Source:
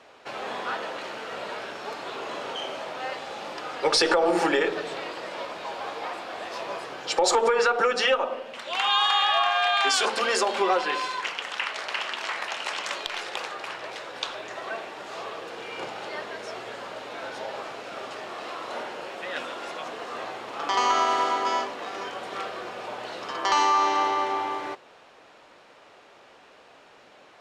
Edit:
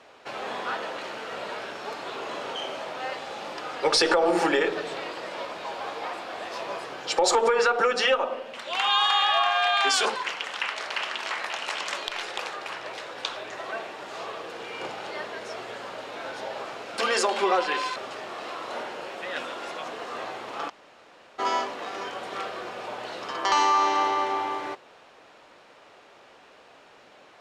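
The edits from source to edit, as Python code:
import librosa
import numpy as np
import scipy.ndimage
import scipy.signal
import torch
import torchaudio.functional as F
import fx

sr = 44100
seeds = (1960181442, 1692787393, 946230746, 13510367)

y = fx.edit(x, sr, fx.move(start_s=10.16, length_s=0.98, to_s=17.96),
    fx.room_tone_fill(start_s=20.69, length_s=0.7, crossfade_s=0.02), tone=tone)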